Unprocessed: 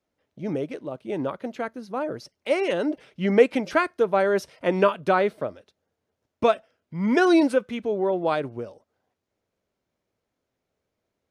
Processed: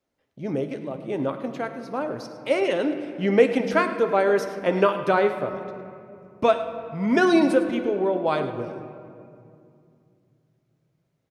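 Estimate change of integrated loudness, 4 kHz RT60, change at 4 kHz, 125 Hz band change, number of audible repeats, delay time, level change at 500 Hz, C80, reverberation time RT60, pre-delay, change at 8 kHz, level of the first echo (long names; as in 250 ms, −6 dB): +0.5 dB, 1.4 s, +1.0 dB, +1.0 dB, 1, 105 ms, +1.0 dB, 9.5 dB, 2.4 s, 7 ms, can't be measured, −15.5 dB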